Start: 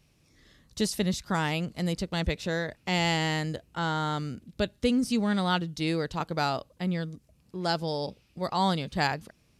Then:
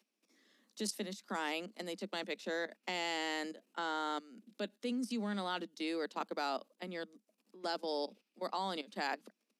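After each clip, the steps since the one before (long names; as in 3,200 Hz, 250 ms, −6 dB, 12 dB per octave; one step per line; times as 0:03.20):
output level in coarse steps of 16 dB
Butterworth high-pass 200 Hz 96 dB per octave
level −3.5 dB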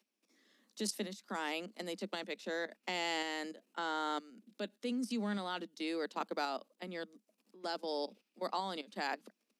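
shaped tremolo saw up 0.93 Hz, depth 35%
level +1.5 dB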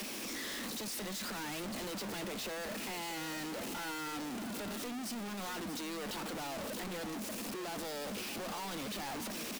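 sign of each sample alone
single-tap delay 634 ms −11 dB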